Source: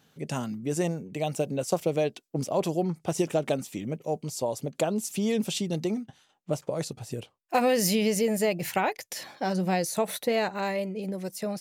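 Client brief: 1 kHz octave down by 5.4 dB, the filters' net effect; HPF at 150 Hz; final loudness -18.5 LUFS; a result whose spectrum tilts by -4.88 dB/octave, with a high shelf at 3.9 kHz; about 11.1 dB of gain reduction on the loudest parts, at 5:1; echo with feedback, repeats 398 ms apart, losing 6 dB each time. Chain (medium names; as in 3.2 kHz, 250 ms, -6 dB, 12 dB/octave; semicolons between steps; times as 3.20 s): high-pass 150 Hz; peaking EQ 1 kHz -8 dB; treble shelf 3.9 kHz -5.5 dB; compression 5:1, threshold -35 dBFS; feedback delay 398 ms, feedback 50%, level -6 dB; trim +20 dB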